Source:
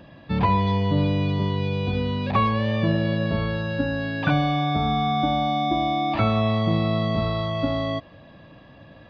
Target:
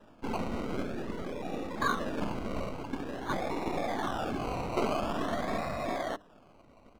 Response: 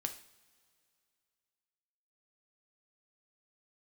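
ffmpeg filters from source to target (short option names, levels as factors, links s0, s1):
-filter_complex "[0:a]highshelf=f=2600:g=11.5,aecho=1:1:4.6:0.92,afftfilt=real='hypot(re,im)*cos(2*PI*random(0))':imag='hypot(re,im)*sin(2*PI*random(1))':win_size=512:overlap=0.75,acrossover=split=190|2400[s0][s1][s2];[s0]aeval=exprs='abs(val(0))':c=same[s3];[s3][s1][s2]amix=inputs=3:normalize=0,acrusher=samples=20:mix=1:aa=0.000001:lfo=1:lforange=12:lforate=0.37,aemphasis=mode=reproduction:type=75kf,bandreject=f=50:t=h:w=6,bandreject=f=100:t=h:w=6,bandreject=f=150:t=h:w=6,bandreject=f=200:t=h:w=6,bandreject=f=250:t=h:w=6,bandreject=f=300:t=h:w=6,atempo=1.3,volume=0.531"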